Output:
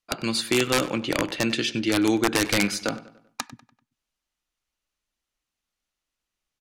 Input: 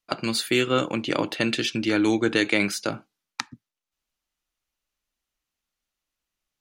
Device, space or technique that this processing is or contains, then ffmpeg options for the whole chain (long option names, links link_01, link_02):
overflowing digital effects unit: -filter_complex "[0:a]asettb=1/sr,asplit=3[link_01][link_02][link_03];[link_01]atrim=end=2.454[link_04];[link_02]atrim=start=2.45:end=3.52,asetpts=PTS-STARTPTS,afade=type=in:duration=0.004:curve=qsin,afade=type=out:start_time=1.066:duration=0.004:curve=qsin,aecho=1:1:4.1:0.44,atrim=end_sample=47187[link_05];[link_03]atrim=start=3.516[link_06];[link_04][link_05]acrossfade=duration=0.004:curve1=hsin:curve2=qsin[link_07];[link_07][link_06]acrossfade=duration=0.004:curve1=qsin:curve2=hsin,aeval=exprs='(mod(3.76*val(0)+1,2)-1)/3.76':channel_layout=same,lowpass=12000,asplit=2[link_08][link_09];[link_09]adelay=97,lowpass=frequency=4600:poles=1,volume=-16dB,asplit=2[link_10][link_11];[link_11]adelay=97,lowpass=frequency=4600:poles=1,volume=0.45,asplit=2[link_12][link_13];[link_13]adelay=97,lowpass=frequency=4600:poles=1,volume=0.45,asplit=2[link_14][link_15];[link_15]adelay=97,lowpass=frequency=4600:poles=1,volume=0.45[link_16];[link_08][link_10][link_12][link_14][link_16]amix=inputs=5:normalize=0"